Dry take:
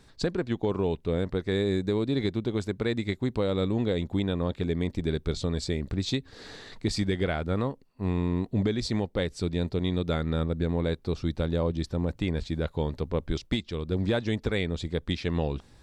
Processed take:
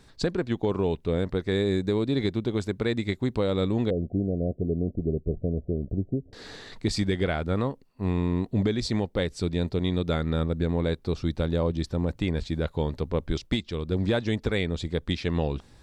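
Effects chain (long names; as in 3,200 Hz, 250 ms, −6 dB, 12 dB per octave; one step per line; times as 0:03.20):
0:03.90–0:06.33: Chebyshev low-pass filter 720 Hz, order 8
level +1.5 dB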